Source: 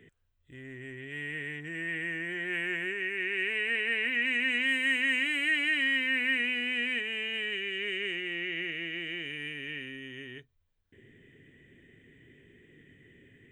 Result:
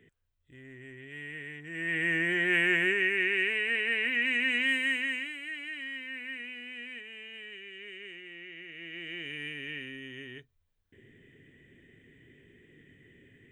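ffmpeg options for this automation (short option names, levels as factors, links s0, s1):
-af "volume=7.94,afade=t=in:st=1.66:d=0.49:silence=0.266073,afade=t=out:st=2.91:d=0.69:silence=0.473151,afade=t=out:st=4.7:d=0.67:silence=0.251189,afade=t=in:st=8.67:d=0.7:silence=0.281838"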